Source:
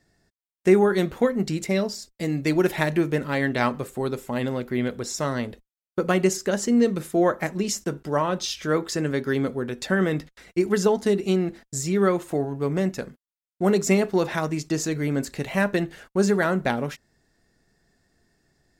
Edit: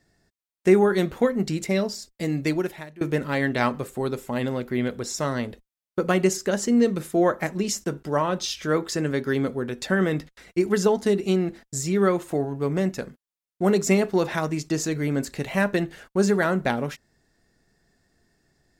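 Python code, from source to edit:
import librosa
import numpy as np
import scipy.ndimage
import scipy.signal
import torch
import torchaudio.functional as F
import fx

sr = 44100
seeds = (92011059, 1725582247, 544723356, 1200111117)

y = fx.edit(x, sr, fx.fade_out_to(start_s=2.45, length_s=0.56, curve='qua', floor_db=-22.5), tone=tone)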